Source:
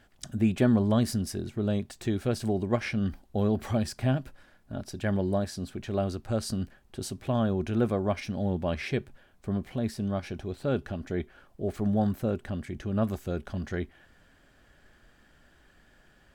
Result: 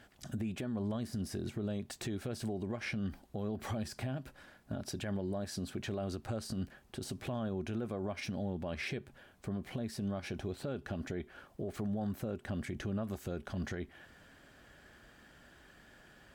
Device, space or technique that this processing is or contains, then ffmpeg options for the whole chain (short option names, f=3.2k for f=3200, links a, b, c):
podcast mastering chain: -af "highpass=f=82:p=1,deesser=0.9,acompressor=threshold=-34dB:ratio=4,alimiter=level_in=8dB:limit=-24dB:level=0:latency=1:release=83,volume=-8dB,volume=3dB" -ar 44100 -c:a libmp3lame -b:a 96k